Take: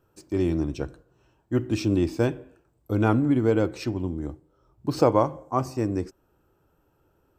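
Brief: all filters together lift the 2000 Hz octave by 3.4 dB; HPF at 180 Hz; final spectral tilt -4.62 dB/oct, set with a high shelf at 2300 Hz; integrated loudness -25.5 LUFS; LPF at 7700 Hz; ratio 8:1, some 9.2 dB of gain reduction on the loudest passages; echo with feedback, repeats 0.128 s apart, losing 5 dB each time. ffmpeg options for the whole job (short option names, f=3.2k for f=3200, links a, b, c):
-af "highpass=180,lowpass=7.7k,equalizer=f=2k:t=o:g=9,highshelf=f=2.3k:g=-7.5,acompressor=threshold=-23dB:ratio=8,aecho=1:1:128|256|384|512|640|768|896:0.562|0.315|0.176|0.0988|0.0553|0.031|0.0173,volume=4dB"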